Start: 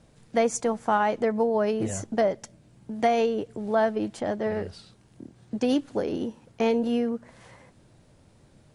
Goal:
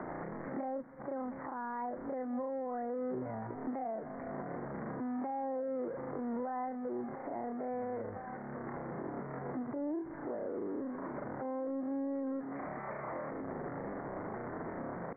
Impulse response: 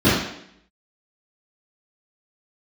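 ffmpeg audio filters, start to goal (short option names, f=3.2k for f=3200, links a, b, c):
-filter_complex "[0:a]aeval=exprs='val(0)+0.5*0.0422*sgn(val(0))':c=same,asplit=2[a][b];[b]aecho=0:1:980|1960|2940:0.075|0.0285|0.0108[c];[a][c]amix=inputs=2:normalize=0,acrossover=split=140[d][e];[e]acompressor=threshold=-36dB:ratio=6[f];[d][f]amix=inputs=2:normalize=0,asetrate=88200,aresample=44100,atempo=0.5,aresample=8000,aresample=44100,acrossover=split=390 2900:gain=0.0794 1 0.2[g][h][i];[g][h][i]amix=inputs=3:normalize=0,alimiter=level_in=9dB:limit=-24dB:level=0:latency=1:release=81,volume=-9dB,asetrate=25442,aresample=44100,volume=2.5dB"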